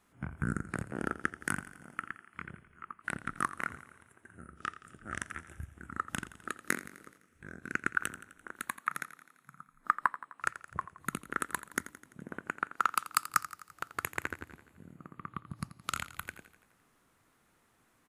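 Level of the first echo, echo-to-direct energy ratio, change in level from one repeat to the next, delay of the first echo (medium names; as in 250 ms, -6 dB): -15.0 dB, -13.0 dB, -4.5 dB, 85 ms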